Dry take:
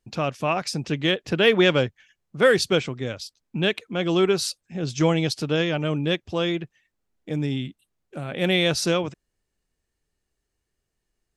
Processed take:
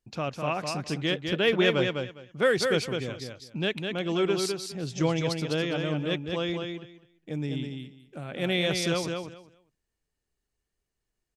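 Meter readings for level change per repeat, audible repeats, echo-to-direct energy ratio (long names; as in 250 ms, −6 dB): −15.0 dB, 3, −5.0 dB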